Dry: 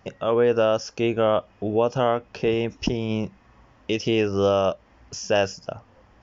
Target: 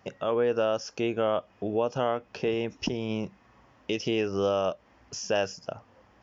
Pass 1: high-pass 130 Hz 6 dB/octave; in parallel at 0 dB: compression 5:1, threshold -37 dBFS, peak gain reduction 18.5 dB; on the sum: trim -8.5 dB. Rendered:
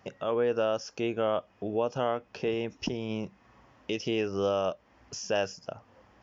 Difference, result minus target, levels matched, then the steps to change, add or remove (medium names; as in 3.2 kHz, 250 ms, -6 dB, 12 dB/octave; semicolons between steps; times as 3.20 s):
compression: peak gain reduction +9 dB
change: compression 5:1, threshold -25.5 dBFS, peak gain reduction 9.5 dB